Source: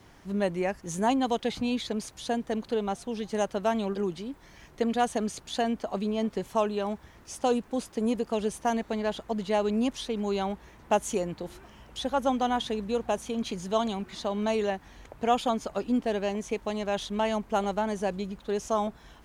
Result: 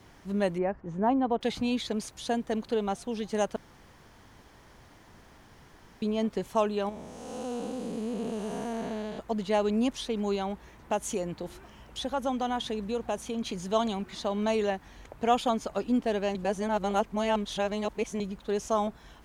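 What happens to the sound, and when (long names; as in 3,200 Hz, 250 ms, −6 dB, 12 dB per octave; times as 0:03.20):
0:00.58–0:01.41: low-pass filter 1,300 Hz
0:03.56–0:06.02: fill with room tone
0:06.89–0:09.19: spectrum smeared in time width 434 ms
0:10.35–0:13.55: downward compressor 1.5 to 1, threshold −31 dBFS
0:16.35–0:18.20: reverse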